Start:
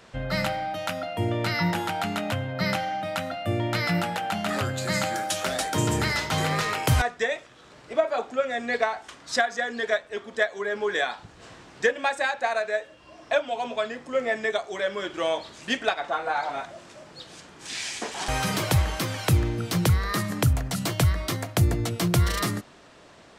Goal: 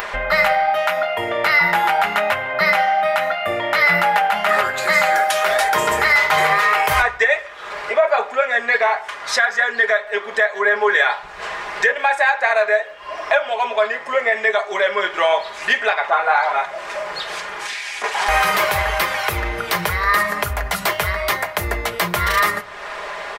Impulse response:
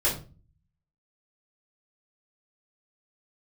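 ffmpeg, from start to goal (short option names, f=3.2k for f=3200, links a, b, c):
-filter_complex "[0:a]asplit=2[a][b];[b]adelay=150,highpass=300,lowpass=3.4k,asoftclip=type=hard:threshold=-19.5dB,volume=-25dB[c];[a][c]amix=inputs=2:normalize=0,flanger=delay=2.4:depth=7.9:regen=-69:speed=0.83:shape=triangular,equalizer=f=125:t=o:w=1:g=-11,equalizer=f=250:t=o:w=1:g=-11,equalizer=f=500:t=o:w=1:g=5,equalizer=f=1k:t=o:w=1:g=9,equalizer=f=2k:t=o:w=1:g=10,equalizer=f=8k:t=o:w=1:g=-6,acompressor=mode=upward:threshold=-26dB:ratio=2.5,asplit=2[d][e];[1:a]atrim=start_sample=2205[f];[e][f]afir=irnorm=-1:irlink=0,volume=-29dB[g];[d][g]amix=inputs=2:normalize=0,asettb=1/sr,asplit=3[h][i][j];[h]atrim=end=17.384[k];[i]atrim=start=17.38:end=18.04,asetpts=PTS-STARTPTS,afade=t=in:d=0.004:c=qsin,afade=t=out:st=0.656:d=0.004:c=qsin,acompressor=threshold=-33dB:ratio=10[l];[j]atrim=start=18.036[m];[k][l]acrossfade=d=0.004:c1=hsin:c2=qsin[n];[n][m]acrossfade=d=0.004:c1=qsin:c2=hsin,highshelf=f=10k:g=11,aecho=1:1:4.9:0.53,alimiter=level_in=12dB:limit=-1dB:release=50:level=0:latency=1,volume=-5dB"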